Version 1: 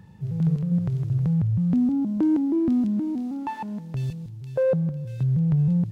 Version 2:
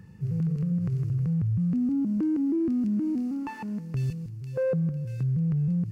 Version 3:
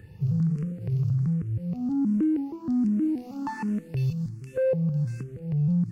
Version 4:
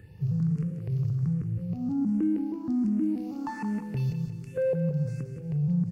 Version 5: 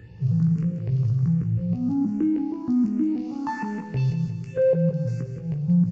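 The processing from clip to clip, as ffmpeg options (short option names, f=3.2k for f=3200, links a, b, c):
-af "superequalizer=8b=0.447:9b=0.398:13b=0.398,alimiter=limit=-21.5dB:level=0:latency=1:release=70"
-filter_complex "[0:a]alimiter=level_in=2dB:limit=-24dB:level=0:latency=1:release=117,volume=-2dB,aeval=exprs='0.0501*(cos(1*acos(clip(val(0)/0.0501,-1,1)))-cos(1*PI/2))+0.00178*(cos(3*acos(clip(val(0)/0.0501,-1,1)))-cos(3*PI/2))':c=same,asplit=2[a][b];[b]afreqshift=1.3[c];[a][c]amix=inputs=2:normalize=1,volume=7.5dB"
-af "aecho=1:1:177|354|531|708|885:0.355|0.156|0.0687|0.0302|0.0133,volume=-2.5dB"
-filter_complex "[0:a]asplit=2[a][b];[b]adelay=17,volume=-6dB[c];[a][c]amix=inputs=2:normalize=0,aresample=16000,aresample=44100,volume=4dB"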